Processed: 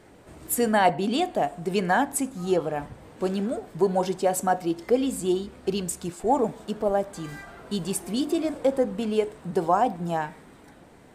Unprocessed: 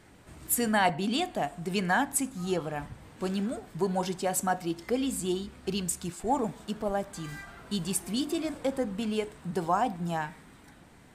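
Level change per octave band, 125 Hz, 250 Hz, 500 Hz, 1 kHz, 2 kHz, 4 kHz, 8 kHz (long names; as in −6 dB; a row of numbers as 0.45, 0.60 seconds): +2.0, +4.0, +7.5, +5.0, +1.0, +0.5, 0.0 decibels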